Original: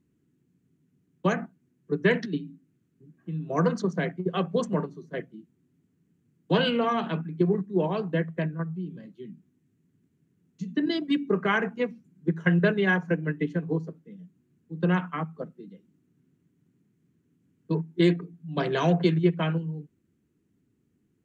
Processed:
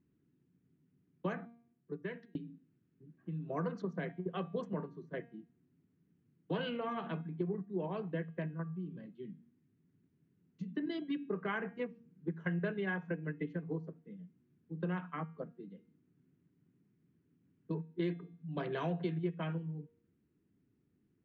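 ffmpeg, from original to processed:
ffmpeg -i in.wav -filter_complex "[0:a]asplit=2[link_01][link_02];[link_01]atrim=end=2.35,asetpts=PTS-STARTPTS,afade=type=out:start_time=1.36:duration=0.99[link_03];[link_02]atrim=start=2.35,asetpts=PTS-STARTPTS,afade=type=in:duration=0.004:curve=hsin[link_04];[link_03][link_04]concat=n=2:v=0:a=1,acompressor=threshold=-35dB:ratio=2,lowpass=3000,bandreject=frequency=234:width_type=h:width=4,bandreject=frequency=468:width_type=h:width=4,bandreject=frequency=702:width_type=h:width=4,bandreject=frequency=936:width_type=h:width=4,bandreject=frequency=1170:width_type=h:width=4,bandreject=frequency=1404:width_type=h:width=4,bandreject=frequency=1638:width_type=h:width=4,bandreject=frequency=1872:width_type=h:width=4,bandreject=frequency=2106:width_type=h:width=4,bandreject=frequency=2340:width_type=h:width=4,bandreject=frequency=2574:width_type=h:width=4,bandreject=frequency=2808:width_type=h:width=4,bandreject=frequency=3042:width_type=h:width=4,bandreject=frequency=3276:width_type=h:width=4,bandreject=frequency=3510:width_type=h:width=4,bandreject=frequency=3744:width_type=h:width=4,bandreject=frequency=3978:width_type=h:width=4,volume=-4.5dB" out.wav

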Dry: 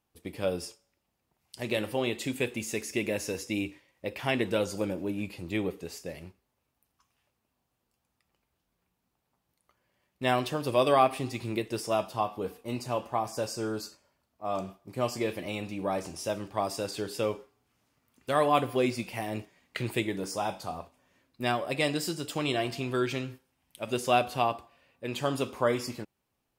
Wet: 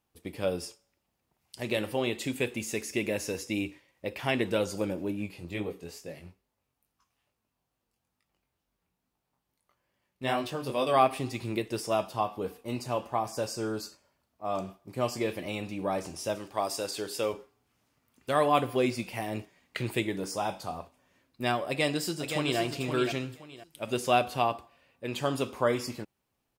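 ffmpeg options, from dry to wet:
ffmpeg -i in.wav -filter_complex "[0:a]asplit=3[link_01][link_02][link_03];[link_01]afade=type=out:start_time=5.11:duration=0.02[link_04];[link_02]flanger=delay=19:depth=4.2:speed=2.3,afade=type=in:start_time=5.11:duration=0.02,afade=type=out:start_time=10.93:duration=0.02[link_05];[link_03]afade=type=in:start_time=10.93:duration=0.02[link_06];[link_04][link_05][link_06]amix=inputs=3:normalize=0,asettb=1/sr,asplit=3[link_07][link_08][link_09];[link_07]atrim=end=16.354[link_10];[link_08]atrim=start=16.35:end=17.33,asetpts=PTS-STARTPTS,afade=type=in:duration=0.004:curve=qsin,afade=type=out:start_time=0.976:duration=0.004:curve=qsin,bass=frequency=250:gain=-8,treble=frequency=4000:gain=4[link_11];[link_09]atrim=start=17.326[link_12];[link_10][link_11]acrossfade=duration=0.004:curve1=hsin:curve2=qsin[link_13];[link_13][link_12]acrossfade=duration=0.004:curve1=qsin:curve2=hsin,asplit=2[link_14][link_15];[link_15]afade=type=in:start_time=21.68:duration=0.01,afade=type=out:start_time=22.59:duration=0.01,aecho=0:1:520|1040|1560:0.473151|0.118288|0.029572[link_16];[link_14][link_16]amix=inputs=2:normalize=0" out.wav

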